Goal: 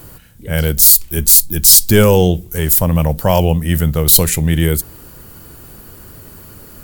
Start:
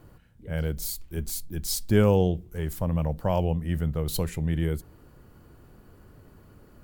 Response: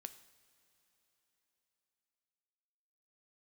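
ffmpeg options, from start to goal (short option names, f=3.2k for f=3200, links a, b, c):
-af "crystalizer=i=4.5:c=0,apsyclip=13.5dB,volume=-1.5dB"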